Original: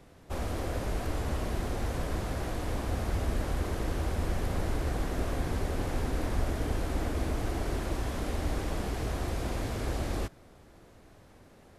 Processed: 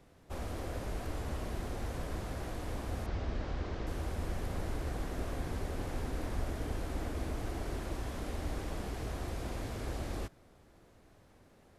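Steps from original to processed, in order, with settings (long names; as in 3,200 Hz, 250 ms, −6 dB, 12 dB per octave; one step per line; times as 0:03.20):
0:03.06–0:03.87: low-pass filter 5,600 Hz 24 dB per octave
level −6 dB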